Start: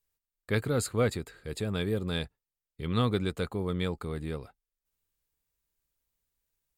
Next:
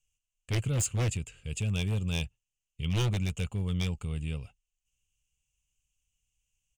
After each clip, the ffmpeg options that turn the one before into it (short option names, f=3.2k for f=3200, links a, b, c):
-af "firequalizer=gain_entry='entry(110,0);entry(330,-18);entry(530,-14);entry(1800,-17);entry(2800,9);entry(4000,-18);entry(6400,5);entry(13000,-19)':delay=0.05:min_phase=1,aeval=exprs='0.0376*(abs(mod(val(0)/0.0376+3,4)-2)-1)':c=same,volume=6dB"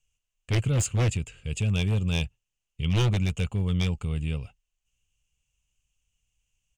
-af "highshelf=f=8k:g=-9.5,volume=5dB"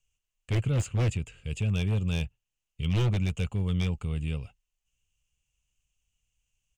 -filter_complex "[0:a]acrossover=split=540|3300[a][b][c];[b]asoftclip=type=hard:threshold=-32.5dB[d];[c]alimiter=level_in=7dB:limit=-24dB:level=0:latency=1:release=391,volume=-7dB[e];[a][d][e]amix=inputs=3:normalize=0,volume=-2dB"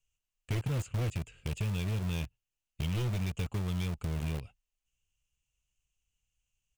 -filter_complex "[0:a]asplit=2[a][b];[b]acrusher=bits=4:mix=0:aa=0.000001,volume=-3dB[c];[a][c]amix=inputs=2:normalize=0,acompressor=threshold=-25dB:ratio=6,volume=-4.5dB"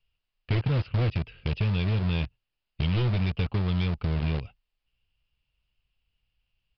-af "aresample=11025,aresample=44100,volume=7dB"